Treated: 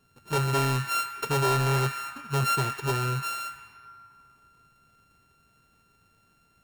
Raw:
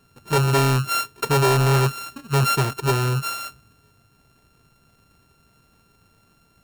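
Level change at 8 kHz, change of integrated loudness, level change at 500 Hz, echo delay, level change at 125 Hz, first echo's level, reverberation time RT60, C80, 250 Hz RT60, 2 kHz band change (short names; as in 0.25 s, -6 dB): -6.0 dB, -6.5 dB, -7.5 dB, none, -7.5 dB, none, 2.7 s, 6.5 dB, 3.2 s, -4.5 dB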